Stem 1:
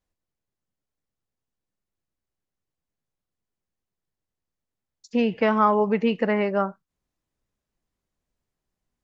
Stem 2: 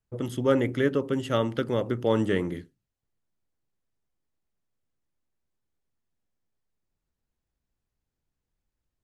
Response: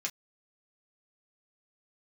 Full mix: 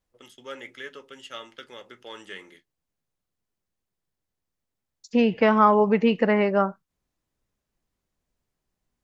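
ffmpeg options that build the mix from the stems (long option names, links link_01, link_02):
-filter_complex "[0:a]volume=2dB[link_01];[1:a]agate=range=-22dB:threshold=-33dB:ratio=16:detection=peak,acontrast=25,bandpass=frequency=3900:width_type=q:width=0.62:csg=0,volume=-11.5dB,asplit=2[link_02][link_03];[link_03]volume=-3.5dB[link_04];[2:a]atrim=start_sample=2205[link_05];[link_04][link_05]afir=irnorm=-1:irlink=0[link_06];[link_01][link_02][link_06]amix=inputs=3:normalize=0"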